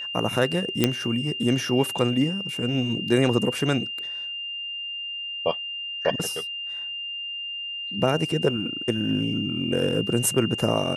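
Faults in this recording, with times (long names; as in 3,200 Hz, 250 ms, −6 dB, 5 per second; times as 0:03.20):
whistle 2,800 Hz −30 dBFS
0:00.84: click −4 dBFS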